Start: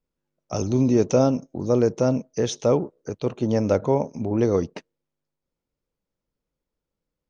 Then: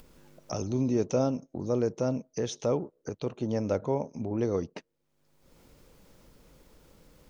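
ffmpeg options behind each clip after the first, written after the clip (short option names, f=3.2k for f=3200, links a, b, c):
-af "acompressor=mode=upward:threshold=-21dB:ratio=2.5,volume=-8dB"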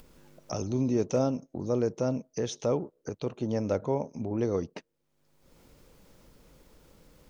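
-af "asoftclip=type=hard:threshold=-16dB"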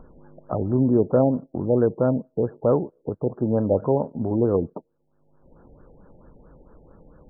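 -af "afftfilt=real='re*lt(b*sr/1024,860*pow(1800/860,0.5+0.5*sin(2*PI*4.5*pts/sr)))':imag='im*lt(b*sr/1024,860*pow(1800/860,0.5+0.5*sin(2*PI*4.5*pts/sr)))':win_size=1024:overlap=0.75,volume=8dB"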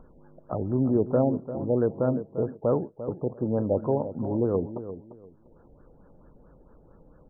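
-filter_complex "[0:a]asplit=2[a][b];[b]adelay=346,lowpass=f=1.5k:p=1,volume=-11.5dB,asplit=2[c][d];[d]adelay=346,lowpass=f=1.5k:p=1,volume=0.24,asplit=2[e][f];[f]adelay=346,lowpass=f=1.5k:p=1,volume=0.24[g];[a][c][e][g]amix=inputs=4:normalize=0,volume=-4.5dB"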